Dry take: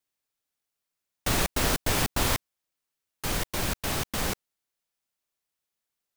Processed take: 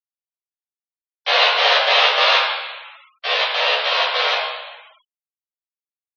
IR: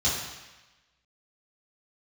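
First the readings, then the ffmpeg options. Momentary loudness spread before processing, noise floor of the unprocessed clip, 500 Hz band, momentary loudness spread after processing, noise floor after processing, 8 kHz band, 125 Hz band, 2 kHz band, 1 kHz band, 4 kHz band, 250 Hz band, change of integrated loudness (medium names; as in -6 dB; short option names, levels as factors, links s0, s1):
7 LU, under -85 dBFS, +12.0 dB, 15 LU, under -85 dBFS, -10.0 dB, under -40 dB, +15.5 dB, +14.5 dB, +17.0 dB, under -25 dB, +12.0 dB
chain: -filter_complex "[0:a]highpass=f=220:t=q:w=0.5412,highpass=f=220:t=q:w=1.307,lowpass=f=3500:t=q:w=0.5176,lowpass=f=3500:t=q:w=0.7071,lowpass=f=3500:t=q:w=1.932,afreqshift=280,highshelf=f=2900:g=12,asplit=2[s0][s1];[s1]adelay=14,volume=0.631[s2];[s0][s2]amix=inputs=2:normalize=0,aecho=1:1:71|142:0.237|0.0403[s3];[1:a]atrim=start_sample=2205,asetrate=39249,aresample=44100[s4];[s3][s4]afir=irnorm=-1:irlink=0,afftfilt=real='re*gte(hypot(re,im),0.0158)':imag='im*gte(hypot(re,im),0.0158)':win_size=1024:overlap=0.75,volume=0.708"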